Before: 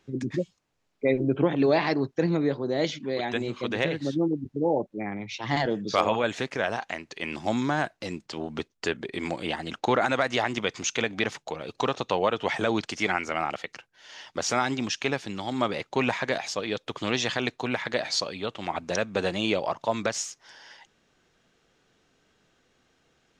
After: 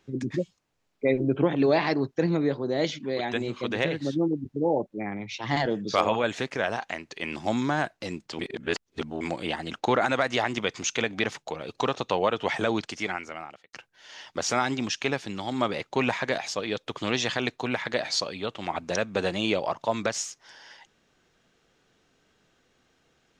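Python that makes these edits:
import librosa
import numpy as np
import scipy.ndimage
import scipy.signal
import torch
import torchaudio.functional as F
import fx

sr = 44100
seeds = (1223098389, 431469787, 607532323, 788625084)

y = fx.edit(x, sr, fx.reverse_span(start_s=8.39, length_s=0.82),
    fx.fade_out_span(start_s=12.64, length_s=1.09), tone=tone)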